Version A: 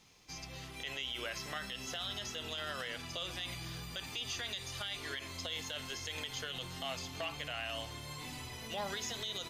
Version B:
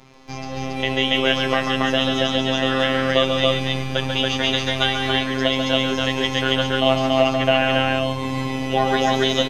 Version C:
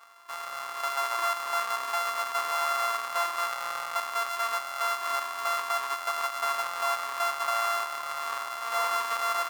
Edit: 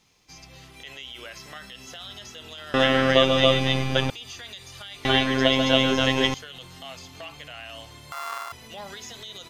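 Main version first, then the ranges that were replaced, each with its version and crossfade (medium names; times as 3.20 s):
A
2.74–4.10 s: from B
5.05–6.34 s: from B
8.12–8.52 s: from C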